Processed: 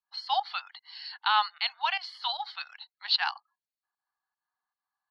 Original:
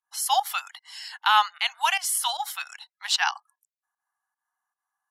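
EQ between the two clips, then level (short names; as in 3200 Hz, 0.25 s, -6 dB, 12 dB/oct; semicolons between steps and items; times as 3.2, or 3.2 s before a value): synth low-pass 4400 Hz, resonance Q 15; air absorption 370 m; -4.0 dB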